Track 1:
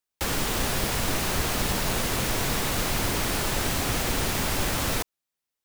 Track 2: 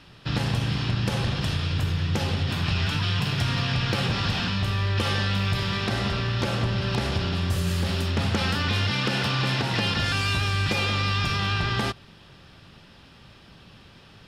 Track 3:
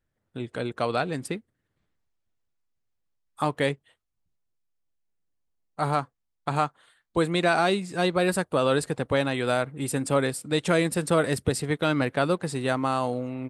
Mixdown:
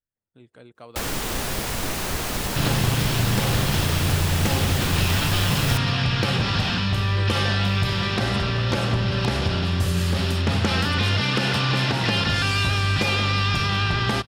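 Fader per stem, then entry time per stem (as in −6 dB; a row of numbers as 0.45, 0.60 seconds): −0.5, +3.0, −16.5 decibels; 0.75, 2.30, 0.00 seconds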